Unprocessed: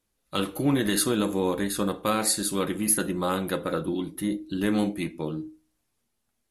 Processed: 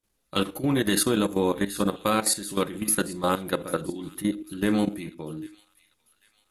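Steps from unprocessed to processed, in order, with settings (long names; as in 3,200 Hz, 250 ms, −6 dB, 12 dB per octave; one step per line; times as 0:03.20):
output level in coarse steps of 13 dB
on a send: delay with a high-pass on its return 795 ms, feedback 42%, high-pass 2,300 Hz, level −18 dB
on the sum: level +4 dB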